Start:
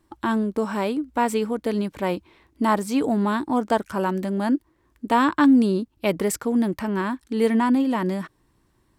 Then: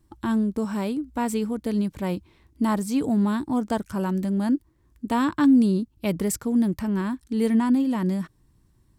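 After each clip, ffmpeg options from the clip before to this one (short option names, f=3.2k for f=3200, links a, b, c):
-af "bass=f=250:g=13,treble=f=4k:g=7,volume=-7dB"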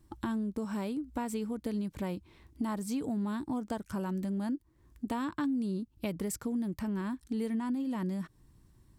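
-af "acompressor=threshold=-33dB:ratio=4"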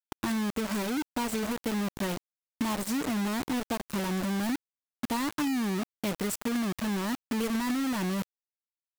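-af "acrusher=bits=5:mix=0:aa=0.000001,volume=3dB"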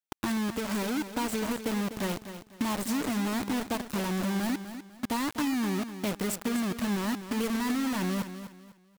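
-af "aecho=1:1:249|498|747:0.282|0.0846|0.0254"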